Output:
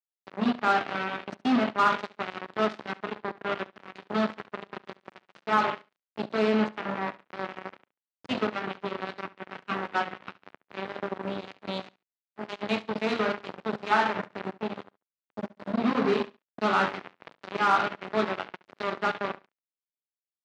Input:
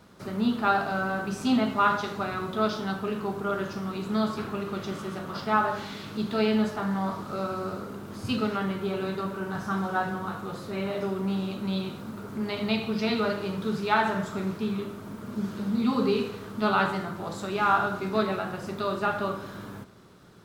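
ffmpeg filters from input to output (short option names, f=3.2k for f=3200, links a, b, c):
-af "acrusher=bits=3:mix=0:aa=0.5,highpass=190,lowpass=3k,aecho=1:1:70|140:0.1|0.019"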